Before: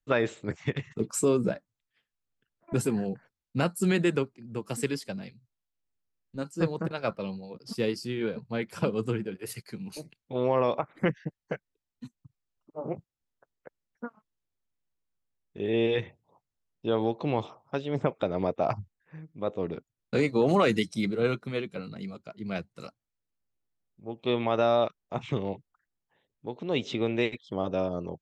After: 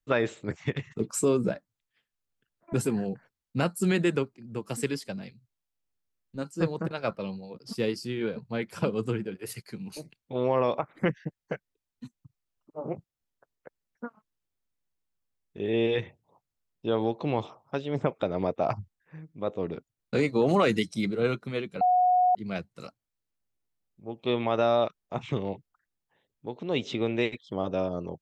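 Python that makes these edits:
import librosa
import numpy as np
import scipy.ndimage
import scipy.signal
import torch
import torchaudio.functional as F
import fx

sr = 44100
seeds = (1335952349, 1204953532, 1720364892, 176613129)

y = fx.edit(x, sr, fx.bleep(start_s=21.81, length_s=0.54, hz=728.0, db=-18.5), tone=tone)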